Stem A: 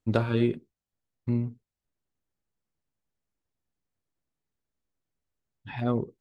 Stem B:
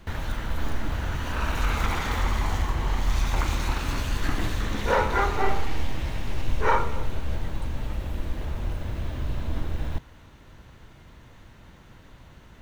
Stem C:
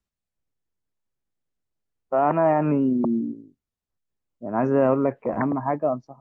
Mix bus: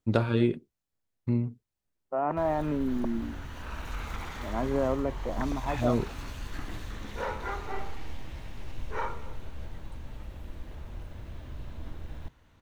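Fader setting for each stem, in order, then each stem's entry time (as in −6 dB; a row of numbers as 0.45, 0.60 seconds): 0.0, −11.5, −8.5 decibels; 0.00, 2.30, 0.00 seconds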